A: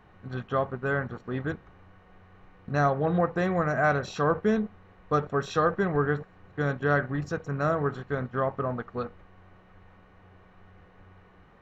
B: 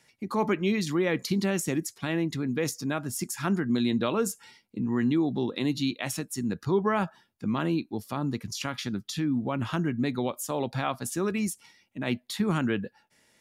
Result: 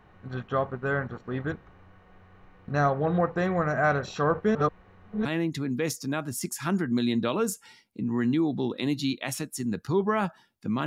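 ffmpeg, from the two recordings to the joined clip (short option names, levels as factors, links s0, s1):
-filter_complex "[0:a]apad=whole_dur=10.86,atrim=end=10.86,asplit=2[s0][s1];[s0]atrim=end=4.552[s2];[s1]atrim=start=4.548:end=5.252,asetpts=PTS-STARTPTS,areverse[s3];[1:a]atrim=start=2.028:end=7.64[s4];[s2][s3]acrossfade=d=0.004:c1=hsin:c2=hsin[s5];[s5][s4]acrossfade=d=0.004:c1=hsin:c2=hsin"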